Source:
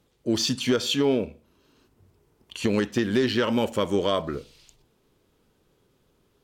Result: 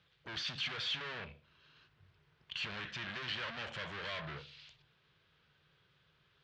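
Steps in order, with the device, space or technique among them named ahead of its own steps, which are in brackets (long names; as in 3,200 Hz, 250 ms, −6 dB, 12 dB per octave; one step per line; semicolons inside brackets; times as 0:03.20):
scooped metal amplifier (tube saturation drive 38 dB, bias 0.5; loudspeaker in its box 92–3,800 Hz, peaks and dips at 150 Hz +9 dB, 320 Hz +8 dB, 850 Hz −4 dB, 1,600 Hz +5 dB; guitar amp tone stack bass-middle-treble 10-0-10)
level +8.5 dB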